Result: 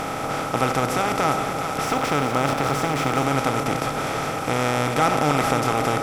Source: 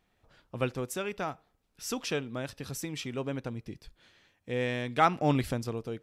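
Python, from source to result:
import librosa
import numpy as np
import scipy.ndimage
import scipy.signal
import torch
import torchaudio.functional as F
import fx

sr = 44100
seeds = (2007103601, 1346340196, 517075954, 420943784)

y = fx.bin_compress(x, sr, power=0.2)
y = fx.echo_split(y, sr, split_hz=570.0, low_ms=290, high_ms=407, feedback_pct=52, wet_db=-8)
y = fx.backlash(y, sr, play_db=-33.0, at=(1.85, 3.22))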